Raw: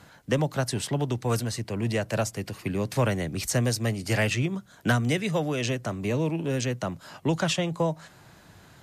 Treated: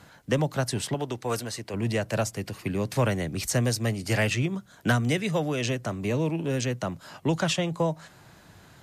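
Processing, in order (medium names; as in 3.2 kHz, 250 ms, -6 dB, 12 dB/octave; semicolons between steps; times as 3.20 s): 0.94–1.74 s: tone controls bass -9 dB, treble -1 dB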